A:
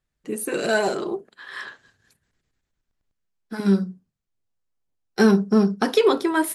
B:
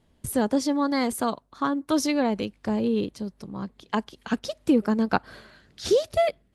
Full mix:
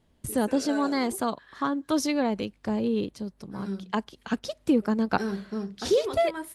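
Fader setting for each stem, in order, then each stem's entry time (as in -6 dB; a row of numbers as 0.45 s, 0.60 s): -15.0 dB, -2.0 dB; 0.00 s, 0.00 s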